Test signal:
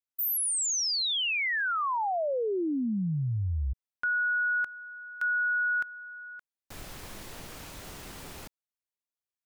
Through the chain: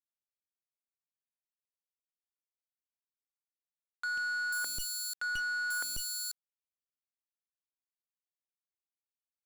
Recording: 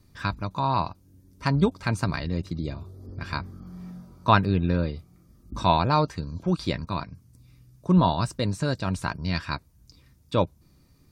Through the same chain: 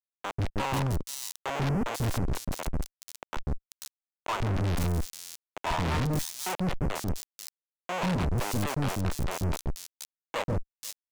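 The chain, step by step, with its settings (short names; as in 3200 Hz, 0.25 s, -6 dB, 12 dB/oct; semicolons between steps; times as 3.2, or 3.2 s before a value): Schmitt trigger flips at -25 dBFS; three bands offset in time mids, lows, highs 0.14/0.49 s, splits 510/4600 Hz; sample leveller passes 5; gain -8 dB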